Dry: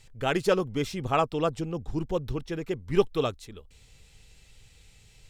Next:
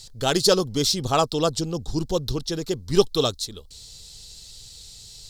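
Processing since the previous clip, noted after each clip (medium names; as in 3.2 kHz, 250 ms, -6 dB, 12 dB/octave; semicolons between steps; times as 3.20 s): resonant high shelf 3.2 kHz +10.5 dB, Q 3; trim +4.5 dB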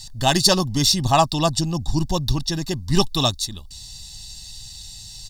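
comb 1.1 ms, depth 87%; trim +2.5 dB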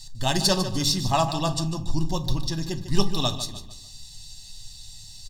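feedback delay 149 ms, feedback 38%, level -12 dB; on a send at -8 dB: reverberation RT60 0.35 s, pre-delay 3 ms; on the sum: trim -6.5 dB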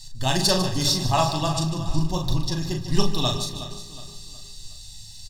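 doubling 39 ms -5 dB; feedback delay 366 ms, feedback 41%, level -13 dB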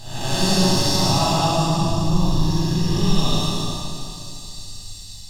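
spectral blur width 333 ms; plate-style reverb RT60 2.1 s, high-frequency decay 0.8×, DRR -6 dB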